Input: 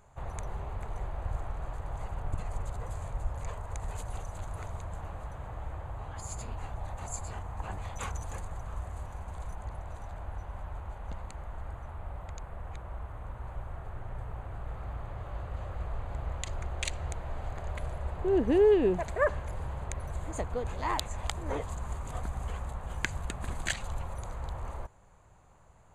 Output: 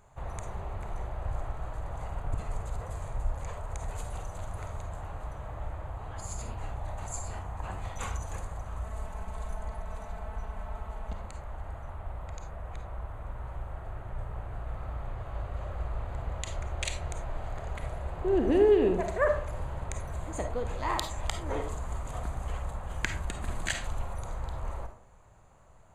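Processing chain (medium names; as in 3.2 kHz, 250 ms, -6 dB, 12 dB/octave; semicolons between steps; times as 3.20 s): 8.84–11.13 s: comb 4.6 ms, depth 73%; algorithmic reverb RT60 0.49 s, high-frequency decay 0.4×, pre-delay 10 ms, DRR 5 dB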